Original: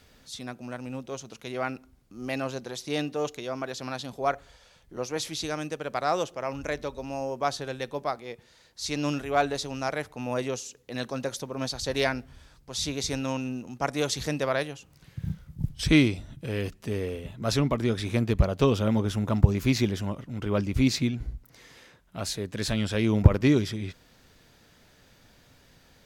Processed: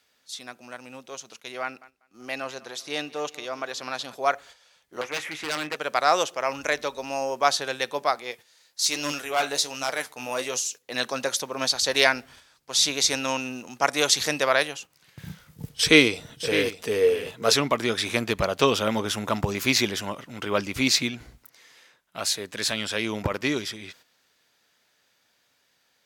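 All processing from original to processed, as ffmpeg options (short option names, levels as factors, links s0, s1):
-filter_complex "[0:a]asettb=1/sr,asplit=3[s0][s1][s2];[s0]atrim=end=1.624[s3];[s1]atrim=start=1.62:end=4.15,asetpts=PTS-STARTPTS,afade=t=in:d=0.004:c=qsin,afade=t=out:st=2.526:d=0.004:c=qsin,highshelf=f=5000:g=-4.5,aecho=1:1:193|386|579|772:0.1|0.047|0.0221|0.0104,atrim=end_sample=111573[s4];[s2]atrim=start=4.146[s5];[s3][s4]acrossfade=d=0.004:c1=hsin:c2=qsin[s6];[s6][s5]acrossfade=d=0.004:c1=qsin:c2=hsin,asettb=1/sr,asplit=3[s7][s8][s9];[s7]atrim=end=5.014[s10];[s8]atrim=start=5.01:end=5.76,asetpts=PTS-STARTPTS,afade=t=in:d=0.004:c=qsin,afade=t=out:st=0.746:d=0.004:c=qsin,highshelf=f=3000:t=q:w=3:g=-14,aeval=exprs='0.0398*(abs(mod(val(0)/0.0398+3,4)-2)-1)':c=same,asplit=2[s11][s12];[s12]adelay=20,volume=0.237[s13];[s11][s13]amix=inputs=2:normalize=0,atrim=end_sample=33075[s14];[s9]atrim=start=5.756[s15];[s10][s14]acrossfade=d=0.004:c1=hsin:c2=qsin[s16];[s16][s15]acrossfade=d=0.004:c1=qsin:c2=hsin,asettb=1/sr,asplit=3[s17][s18][s19];[s17]atrim=end=8.314[s20];[s18]atrim=start=8.31:end=10.82,asetpts=PTS-STARTPTS,afade=t=in:d=0.004:c=qsin,afade=t=out:st=2.506:d=0.004:c=qsin,highshelf=f=5800:g=9.5,flanger=delay=6.6:depth=9.2:regen=59:speed=1.3:shape=triangular,asoftclip=type=hard:threshold=0.0631[s21];[s19]atrim=start=10.816[s22];[s20][s21]acrossfade=d=0.004:c1=hsin:c2=qsin[s23];[s23][s22]acrossfade=d=0.004:c1=qsin:c2=hsin,asettb=1/sr,asplit=3[s24][s25][s26];[s24]atrim=end=15.524[s27];[s25]atrim=start=15.52:end=17.53,asetpts=PTS-STARTPTS,afade=t=in:d=0.004:c=qsin,afade=t=out:st=2.006:d=0.004:c=qsin,equalizer=f=460:w=7.8:g=15,aecho=1:1:609:0.282,atrim=end_sample=88641[s28];[s26]atrim=start=17.526[s29];[s27][s28]acrossfade=d=0.004:c1=hsin:c2=qsin[s30];[s30][s29]acrossfade=d=0.004:c1=qsin:c2=hsin,agate=range=0.355:threshold=0.00398:ratio=16:detection=peak,highpass=f=1100:p=1,dynaudnorm=f=410:g=21:m=2.37,volume=1.5"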